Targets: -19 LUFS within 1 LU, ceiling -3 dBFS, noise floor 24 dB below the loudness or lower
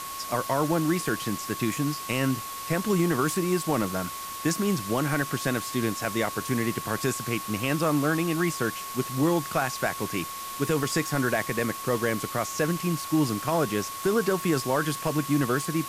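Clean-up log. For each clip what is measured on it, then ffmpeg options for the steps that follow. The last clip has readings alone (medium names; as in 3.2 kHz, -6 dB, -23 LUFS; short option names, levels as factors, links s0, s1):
steady tone 1.1 kHz; tone level -36 dBFS; noise floor -36 dBFS; noise floor target -51 dBFS; loudness -27.0 LUFS; peak level -12.0 dBFS; loudness target -19.0 LUFS
-> -af "bandreject=f=1100:w=30"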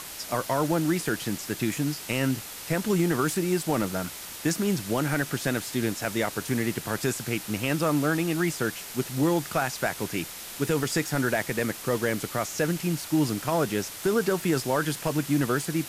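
steady tone not found; noise floor -40 dBFS; noise floor target -52 dBFS
-> -af "afftdn=nr=12:nf=-40"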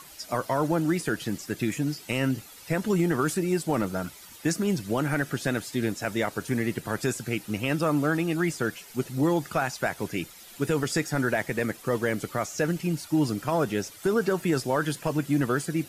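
noise floor -48 dBFS; noise floor target -52 dBFS
-> -af "afftdn=nr=6:nf=-48"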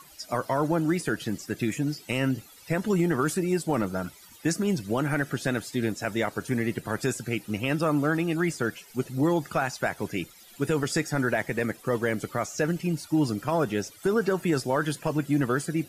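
noise floor -51 dBFS; noise floor target -52 dBFS
-> -af "afftdn=nr=6:nf=-51"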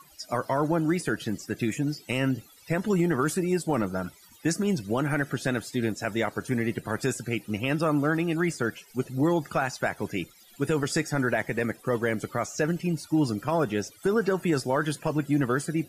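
noise floor -55 dBFS; loudness -28.0 LUFS; peak level -13.0 dBFS; loudness target -19.0 LUFS
-> -af "volume=2.82"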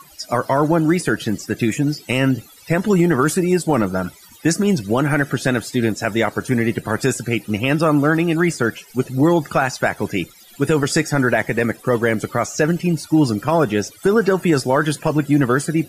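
loudness -19.0 LUFS; peak level -4.0 dBFS; noise floor -46 dBFS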